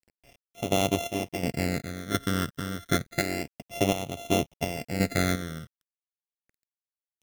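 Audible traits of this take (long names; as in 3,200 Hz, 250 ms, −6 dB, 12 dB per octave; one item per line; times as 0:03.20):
a buzz of ramps at a fixed pitch in blocks of 64 samples
chopped level 1.4 Hz, depth 60%, duty 50%
a quantiser's noise floor 10 bits, dither none
phaser sweep stages 12, 0.3 Hz, lowest notch 770–1,600 Hz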